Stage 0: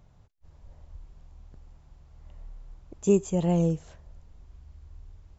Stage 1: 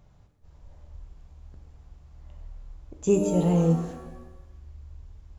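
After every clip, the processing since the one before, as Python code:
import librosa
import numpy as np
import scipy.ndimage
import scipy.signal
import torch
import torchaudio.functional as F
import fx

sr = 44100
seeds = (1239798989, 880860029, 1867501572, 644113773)

y = fx.rev_shimmer(x, sr, seeds[0], rt60_s=1.0, semitones=7, shimmer_db=-8, drr_db=5.5)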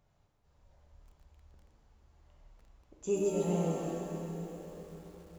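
y = fx.low_shelf(x, sr, hz=290.0, db=-8.0)
y = fx.rev_plate(y, sr, seeds[1], rt60_s=4.6, hf_ratio=0.8, predelay_ms=0, drr_db=-0.5)
y = fx.echo_crushed(y, sr, ms=131, feedback_pct=55, bits=8, wet_db=-7.0)
y = F.gain(torch.from_numpy(y), -9.0).numpy()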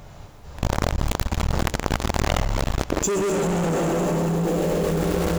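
y = fx.leveller(x, sr, passes=5)
y = fx.env_flatten(y, sr, amount_pct=100)
y = F.gain(torch.from_numpy(y), -1.0).numpy()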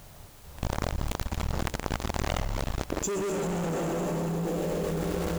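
y = fx.quant_dither(x, sr, seeds[2], bits=8, dither='triangular')
y = F.gain(torch.from_numpy(y), -7.5).numpy()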